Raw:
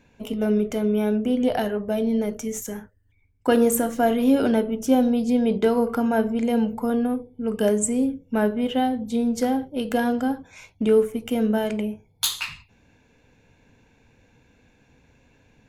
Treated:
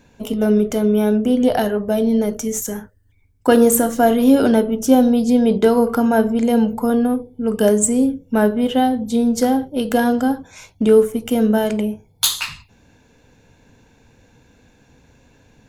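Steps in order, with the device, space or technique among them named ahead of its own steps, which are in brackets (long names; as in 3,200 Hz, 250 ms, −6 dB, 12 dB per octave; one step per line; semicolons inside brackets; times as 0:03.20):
exciter from parts (in parallel at −5 dB: high-pass filter 2,200 Hz 24 dB per octave + soft clipping −29 dBFS, distortion −5 dB)
on the sum: level +6 dB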